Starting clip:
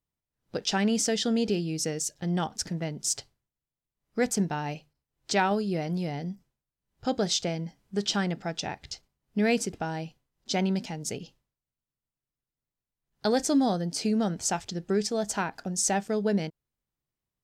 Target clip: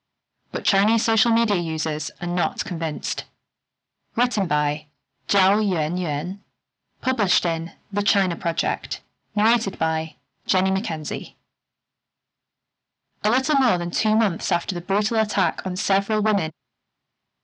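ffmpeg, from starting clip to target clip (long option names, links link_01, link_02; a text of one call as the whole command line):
ffmpeg -i in.wav -af "aeval=exprs='0.237*sin(PI/2*3.55*val(0)/0.237)':channel_layout=same,highpass=160,equalizer=frequency=170:width_type=q:width=4:gain=-7,equalizer=frequency=320:width_type=q:width=4:gain=-6,equalizer=frequency=480:width_type=q:width=4:gain=-10,lowpass=frequency=4700:width=0.5412,lowpass=frequency=4700:width=1.3066" out.wav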